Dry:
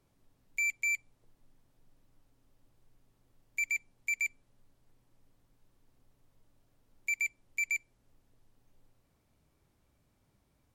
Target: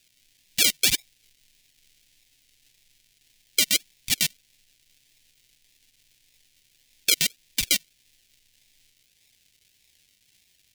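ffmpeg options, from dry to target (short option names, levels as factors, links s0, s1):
-af "bandreject=f=51.21:t=h:w=4,bandreject=f=102.42:t=h:w=4,bandreject=f=153.63:t=h:w=4,bandreject=f=204.84:t=h:w=4,bandreject=f=256.05:t=h:w=4,bandreject=f=307.26:t=h:w=4,bandreject=f=358.47:t=h:w=4,bandreject=f=409.68:t=h:w=4,bandreject=f=460.89:t=h:w=4,bandreject=f=512.1:t=h:w=4,bandreject=f=563.31:t=h:w=4,bandreject=f=614.52:t=h:w=4,bandreject=f=665.73:t=h:w=4,bandreject=f=716.94:t=h:w=4,bandreject=f=768.15:t=h:w=4,bandreject=f=819.36:t=h:w=4,bandreject=f=870.57:t=h:w=4,bandreject=f=921.78:t=h:w=4,bandreject=f=972.99:t=h:w=4,bandreject=f=1024.2:t=h:w=4,bandreject=f=1075.41:t=h:w=4,bandreject=f=1126.62:t=h:w=4,bandreject=f=1177.83:t=h:w=4,bandreject=f=1229.04:t=h:w=4,bandreject=f=1280.25:t=h:w=4,bandreject=f=1331.46:t=h:w=4,bandreject=f=1382.67:t=h:w=4,acrusher=samples=41:mix=1:aa=0.000001:lfo=1:lforange=24.6:lforate=1.7,aexciter=amount=14.7:drive=9:freq=2000,volume=0.501"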